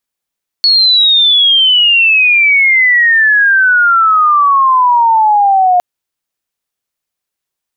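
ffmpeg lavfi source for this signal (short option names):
-f lavfi -i "aevalsrc='pow(10,(-5-0.5*t/5.16)/20)*sin(2*PI*4400*5.16/log(710/4400)*(exp(log(710/4400)*t/5.16)-1))':d=5.16:s=44100"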